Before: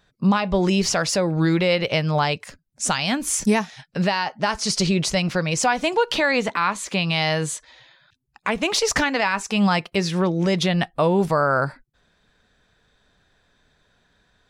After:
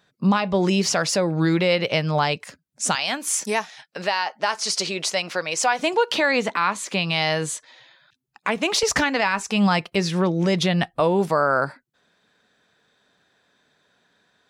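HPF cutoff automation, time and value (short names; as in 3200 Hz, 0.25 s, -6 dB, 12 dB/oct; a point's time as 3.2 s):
130 Hz
from 2.95 s 450 Hz
from 5.79 s 170 Hz
from 8.83 s 62 Hz
from 11 s 190 Hz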